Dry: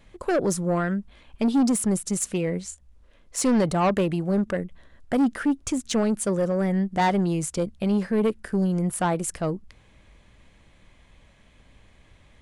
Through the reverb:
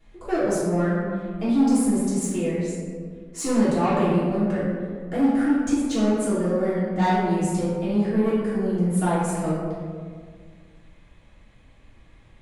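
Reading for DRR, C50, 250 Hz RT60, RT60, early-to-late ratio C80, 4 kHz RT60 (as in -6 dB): -11.0 dB, -1.5 dB, 2.2 s, 1.9 s, 1.0 dB, 0.90 s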